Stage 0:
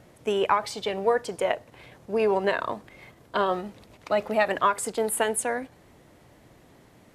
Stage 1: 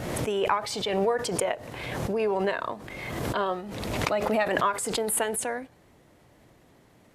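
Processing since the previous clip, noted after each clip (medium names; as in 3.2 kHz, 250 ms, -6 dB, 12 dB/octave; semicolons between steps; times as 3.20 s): swell ahead of each attack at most 30 dB/s; trim -3.5 dB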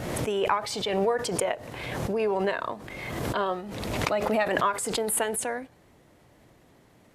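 no audible change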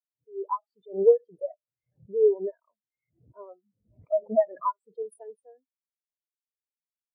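fade-in on the opening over 0.53 s; spectral contrast expander 4:1; trim +1.5 dB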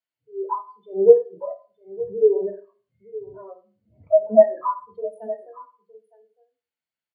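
delay 913 ms -17.5 dB; reverberation RT60 0.35 s, pre-delay 3 ms, DRR -0.5 dB; trim -6 dB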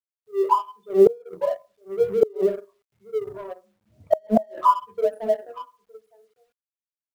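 companding laws mixed up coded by A; inverted gate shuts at -12 dBFS, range -31 dB; trim +8 dB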